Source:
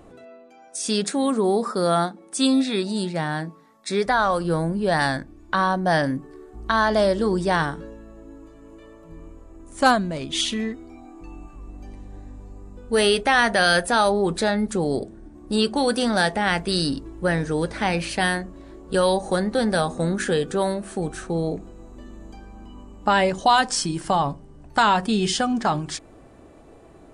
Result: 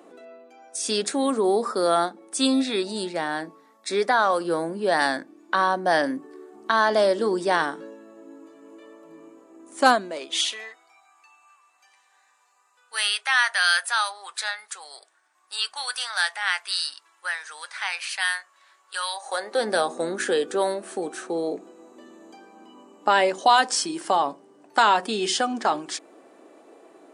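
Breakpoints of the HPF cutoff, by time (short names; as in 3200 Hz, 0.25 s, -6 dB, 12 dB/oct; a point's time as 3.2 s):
HPF 24 dB/oct
9.9 s 260 Hz
11.05 s 1100 Hz
19.11 s 1100 Hz
19.69 s 290 Hz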